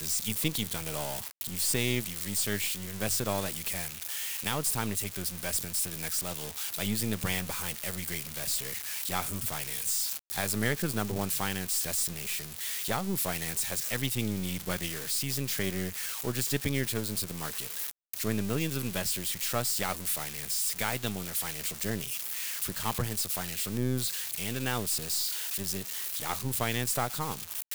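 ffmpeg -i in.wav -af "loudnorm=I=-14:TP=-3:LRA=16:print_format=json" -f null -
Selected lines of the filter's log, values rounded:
"input_i" : "-30.8",
"input_tp" : "-14.5",
"input_lra" : "1.3",
"input_thresh" : "-40.8",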